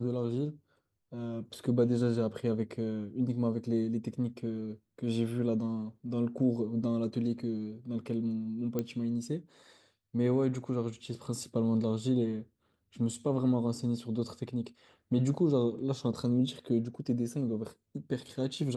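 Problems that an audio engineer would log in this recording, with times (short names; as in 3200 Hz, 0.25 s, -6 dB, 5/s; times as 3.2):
8.79 pop -19 dBFS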